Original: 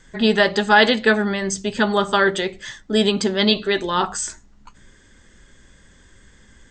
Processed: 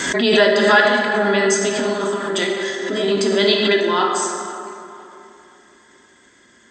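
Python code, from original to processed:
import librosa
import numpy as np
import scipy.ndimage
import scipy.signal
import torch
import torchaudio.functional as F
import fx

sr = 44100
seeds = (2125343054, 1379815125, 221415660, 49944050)

y = scipy.signal.sosfilt(scipy.signal.butter(2, 240.0, 'highpass', fs=sr, output='sos'), x)
y = y + 0.41 * np.pad(y, (int(3.0 * sr / 1000.0), 0))[:len(y)]
y = fx.over_compress(y, sr, threshold_db=-22.0, ratio=-0.5, at=(0.8, 3.16))
y = fx.echo_tape(y, sr, ms=503, feedback_pct=42, wet_db=-17.0, lp_hz=2300.0, drive_db=4.0, wow_cents=32)
y = fx.rev_plate(y, sr, seeds[0], rt60_s=2.5, hf_ratio=0.45, predelay_ms=0, drr_db=-0.5)
y = fx.pre_swell(y, sr, db_per_s=35.0)
y = y * librosa.db_to_amplitude(-1.0)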